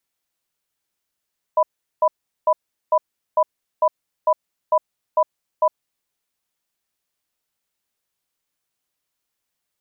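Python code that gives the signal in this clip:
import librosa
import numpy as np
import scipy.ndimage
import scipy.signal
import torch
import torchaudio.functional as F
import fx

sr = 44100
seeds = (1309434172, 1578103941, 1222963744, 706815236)

y = fx.cadence(sr, length_s=4.12, low_hz=623.0, high_hz=992.0, on_s=0.06, off_s=0.39, level_db=-15.0)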